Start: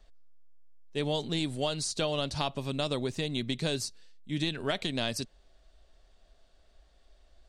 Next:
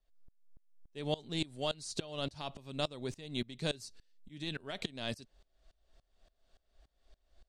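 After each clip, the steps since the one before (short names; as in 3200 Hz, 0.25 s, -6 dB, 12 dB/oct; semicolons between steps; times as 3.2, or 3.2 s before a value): dB-ramp tremolo swelling 3.5 Hz, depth 23 dB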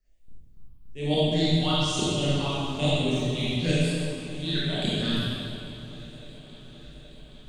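phaser stages 6, 1.1 Hz, lowest notch 430–1700 Hz; swung echo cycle 0.823 s, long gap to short 3:1, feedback 65%, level -20 dB; reverb RT60 2.3 s, pre-delay 22 ms, DRR -9.5 dB; gain +4.5 dB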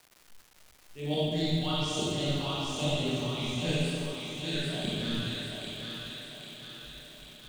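spectral noise reduction 14 dB; crackle 440/s -38 dBFS; thinning echo 0.793 s, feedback 56%, high-pass 640 Hz, level -3.5 dB; gain -6 dB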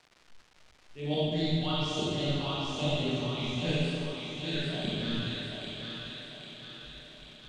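LPF 5100 Hz 12 dB/oct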